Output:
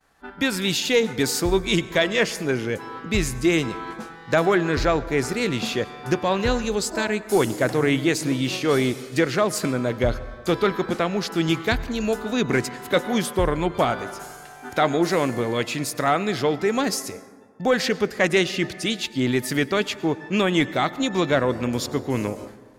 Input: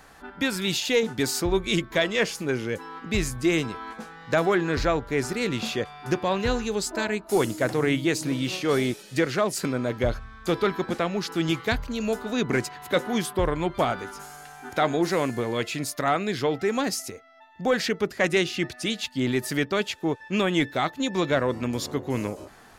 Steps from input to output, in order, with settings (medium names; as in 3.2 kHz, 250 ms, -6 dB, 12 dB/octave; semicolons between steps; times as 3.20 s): expander -41 dBFS; on a send: reverberation RT60 1.8 s, pre-delay 88 ms, DRR 16.5 dB; on the sum: trim +3 dB